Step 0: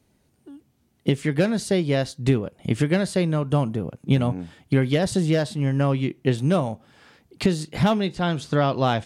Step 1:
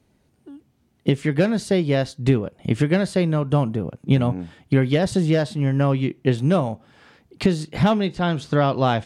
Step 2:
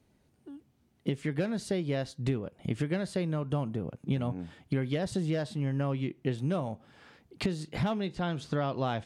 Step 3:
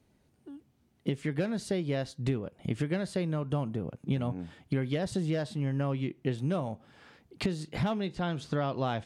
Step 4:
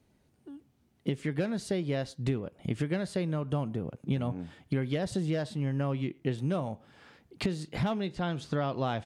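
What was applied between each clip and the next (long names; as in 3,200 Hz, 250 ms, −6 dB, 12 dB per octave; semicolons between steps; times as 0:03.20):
high-shelf EQ 5,600 Hz −7 dB; level +2 dB
downward compressor 2 to 1, threshold −27 dBFS, peak gain reduction 8.5 dB; level −5 dB
no processing that can be heard
far-end echo of a speakerphone 110 ms, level −26 dB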